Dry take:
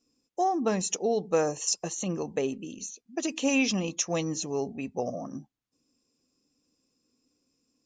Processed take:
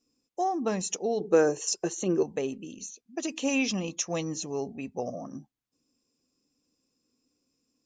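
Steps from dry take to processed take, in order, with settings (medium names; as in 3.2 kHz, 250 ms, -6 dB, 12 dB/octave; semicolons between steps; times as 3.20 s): 1.20–2.23 s: small resonant body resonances 380/1500 Hz, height 15 dB, ringing for 35 ms; trim -2 dB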